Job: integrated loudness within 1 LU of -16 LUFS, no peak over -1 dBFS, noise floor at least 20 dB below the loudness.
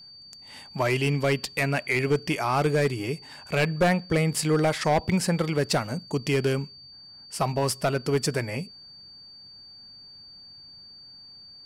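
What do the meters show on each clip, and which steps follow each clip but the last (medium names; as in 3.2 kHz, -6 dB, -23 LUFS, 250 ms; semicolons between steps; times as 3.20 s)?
clipped samples 0.7%; clipping level -16.0 dBFS; steady tone 4.6 kHz; tone level -45 dBFS; loudness -25.5 LUFS; peak level -16.0 dBFS; loudness target -16.0 LUFS
-> clip repair -16 dBFS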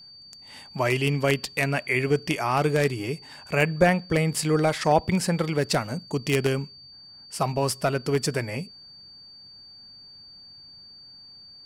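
clipped samples 0.0%; steady tone 4.6 kHz; tone level -45 dBFS
-> band-stop 4.6 kHz, Q 30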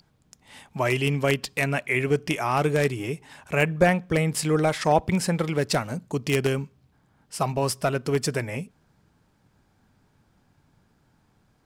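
steady tone not found; loudness -25.0 LUFS; peak level -7.0 dBFS; loudness target -16.0 LUFS
-> trim +9 dB; peak limiter -1 dBFS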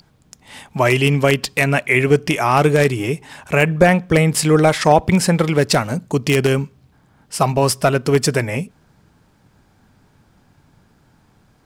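loudness -16.5 LUFS; peak level -1.0 dBFS; noise floor -56 dBFS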